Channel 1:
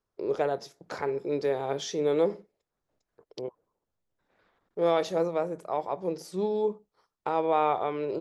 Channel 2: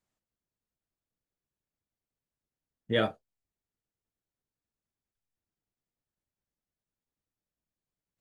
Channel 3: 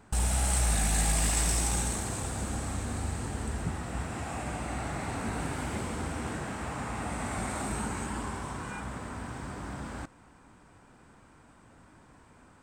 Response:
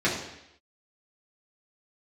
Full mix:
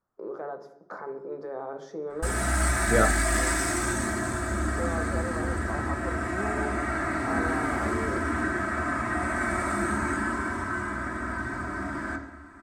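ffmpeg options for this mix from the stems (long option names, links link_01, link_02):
-filter_complex "[0:a]highpass=150,alimiter=limit=-23.5dB:level=0:latency=1:release=64,volume=-6dB,asplit=2[link_01][link_02];[link_02]volume=-19.5dB[link_03];[1:a]volume=3dB[link_04];[2:a]highshelf=frequency=1500:width_type=q:width=1.5:gain=11,aecho=1:1:3.1:0.87,adelay=2100,volume=-4dB,asplit=2[link_05][link_06];[link_06]volume=-10dB[link_07];[3:a]atrim=start_sample=2205[link_08];[link_03][link_07]amix=inputs=2:normalize=0[link_09];[link_09][link_08]afir=irnorm=-1:irlink=0[link_10];[link_01][link_04][link_05][link_10]amix=inputs=4:normalize=0,highshelf=frequency=1900:width_type=q:width=3:gain=-12.5"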